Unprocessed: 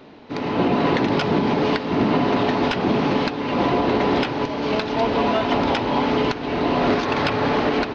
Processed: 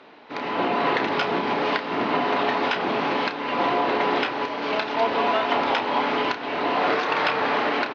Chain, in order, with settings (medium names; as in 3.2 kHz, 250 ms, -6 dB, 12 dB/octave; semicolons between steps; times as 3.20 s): 6.76–7.39 s: frequency shift +27 Hz; band-pass filter 1.6 kHz, Q 0.57; doubling 31 ms -9 dB; trim +1.5 dB